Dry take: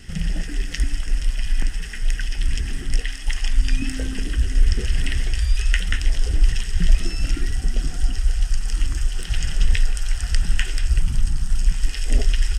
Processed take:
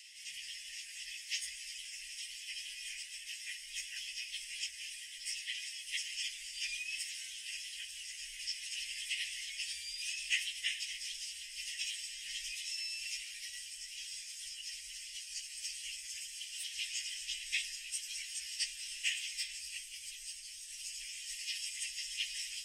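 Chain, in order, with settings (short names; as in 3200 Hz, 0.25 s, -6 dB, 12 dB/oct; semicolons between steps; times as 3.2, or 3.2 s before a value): plain phase-vocoder stretch 1.8×; elliptic high-pass 2200 Hz, stop band 50 dB; gain -2 dB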